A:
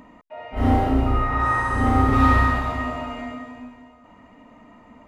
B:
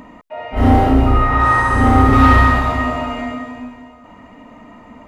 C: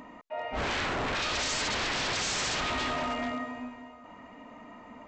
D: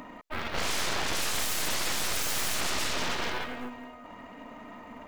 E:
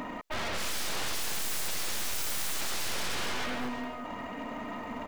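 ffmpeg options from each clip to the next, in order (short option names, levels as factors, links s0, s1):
-af "acontrast=89,volume=1.12"
-af "lowshelf=f=190:g=-9.5,aresample=16000,aeval=exprs='0.1*(abs(mod(val(0)/0.1+3,4)-2)-1)':c=same,aresample=44100,volume=0.501"
-af "acrusher=bits=8:mode=log:mix=0:aa=0.000001,aeval=exprs='0.0841*(cos(1*acos(clip(val(0)/0.0841,-1,1)))-cos(1*PI/2))+0.0188*(cos(3*acos(clip(val(0)/0.0841,-1,1)))-cos(3*PI/2))+0.0237*(cos(6*acos(clip(val(0)/0.0841,-1,1)))-cos(6*PI/2))+0.0211*(cos(7*acos(clip(val(0)/0.0841,-1,1)))-cos(7*PI/2))':c=same"
-af "asoftclip=type=hard:threshold=0.015,aecho=1:1:350:0.178,volume=2.24"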